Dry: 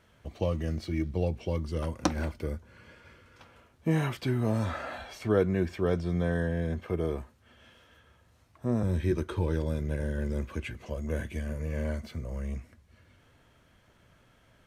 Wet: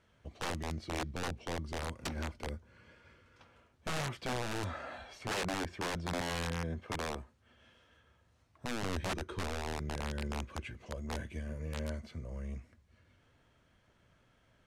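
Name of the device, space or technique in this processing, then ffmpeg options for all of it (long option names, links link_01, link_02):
overflowing digital effects unit: -af "aeval=exprs='(mod(14.1*val(0)+1,2)-1)/14.1':channel_layout=same,lowpass=8900,volume=-6.5dB"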